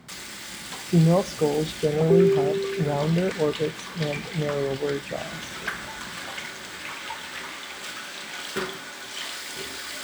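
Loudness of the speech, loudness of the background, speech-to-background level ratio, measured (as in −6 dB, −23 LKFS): −24.0 LKFS, −34.0 LKFS, 10.0 dB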